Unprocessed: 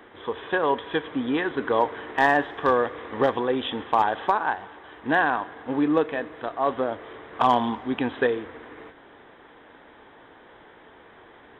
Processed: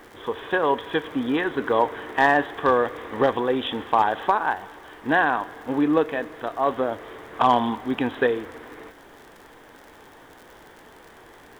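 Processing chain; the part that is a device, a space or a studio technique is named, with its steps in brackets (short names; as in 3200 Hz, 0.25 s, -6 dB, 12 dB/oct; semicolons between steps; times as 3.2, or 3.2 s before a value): vinyl LP (crackle 58/s -39 dBFS; pink noise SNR 34 dB); gain +1.5 dB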